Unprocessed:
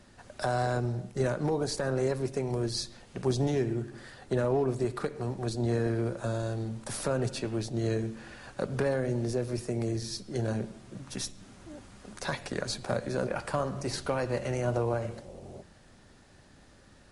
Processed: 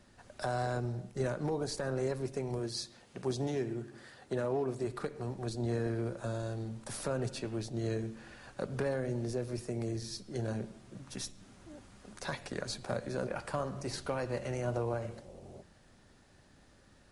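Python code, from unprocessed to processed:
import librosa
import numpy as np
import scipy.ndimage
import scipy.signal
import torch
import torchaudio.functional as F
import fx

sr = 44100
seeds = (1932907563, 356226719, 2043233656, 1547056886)

y = fx.highpass(x, sr, hz=140.0, slope=6, at=(2.59, 4.87))
y = F.gain(torch.from_numpy(y), -5.0).numpy()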